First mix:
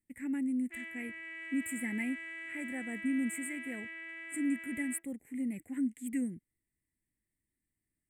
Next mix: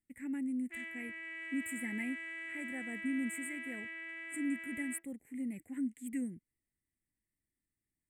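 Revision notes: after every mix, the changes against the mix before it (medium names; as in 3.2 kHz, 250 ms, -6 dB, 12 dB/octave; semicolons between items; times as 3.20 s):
speech -3.5 dB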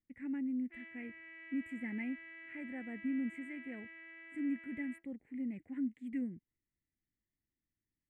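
background -5.5 dB; master: add distance through air 260 m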